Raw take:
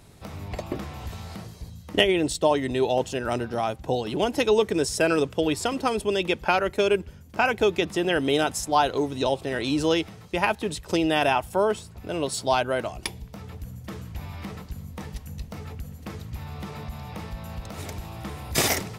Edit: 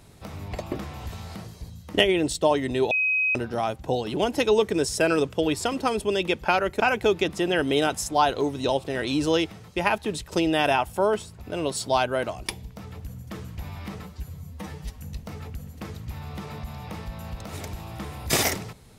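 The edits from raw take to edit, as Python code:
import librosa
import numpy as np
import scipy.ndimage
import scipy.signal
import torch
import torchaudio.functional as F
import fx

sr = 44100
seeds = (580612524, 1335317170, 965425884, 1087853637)

y = fx.edit(x, sr, fx.bleep(start_s=2.91, length_s=0.44, hz=2530.0, db=-20.0),
    fx.cut(start_s=6.8, length_s=0.57),
    fx.stretch_span(start_s=14.59, length_s=0.64, factor=1.5), tone=tone)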